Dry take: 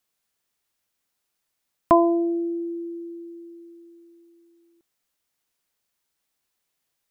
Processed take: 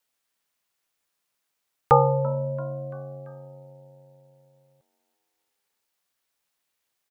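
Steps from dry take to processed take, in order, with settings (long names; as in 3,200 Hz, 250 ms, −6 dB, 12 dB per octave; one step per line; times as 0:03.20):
bass and treble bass −11 dB, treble −2 dB
echo with shifted repeats 338 ms, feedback 51%, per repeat +93 Hz, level −22 dB
ring modulation 200 Hz
level +4 dB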